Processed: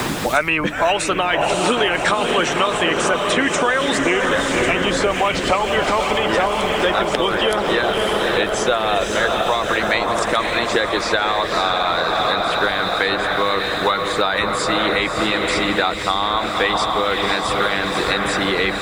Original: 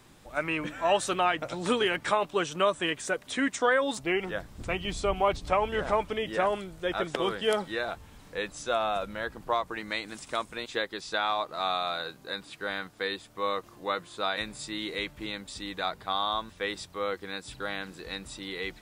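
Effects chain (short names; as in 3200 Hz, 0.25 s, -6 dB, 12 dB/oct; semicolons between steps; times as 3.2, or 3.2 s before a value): high shelf 8400 Hz -5.5 dB; diffused feedback echo 0.555 s, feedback 60%, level -4.5 dB; in parallel at +1 dB: limiter -22.5 dBFS, peak gain reduction 11.5 dB; on the sum: harmonic-percussive split percussive +9 dB; requantised 10-bit, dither triangular; three-band squash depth 100%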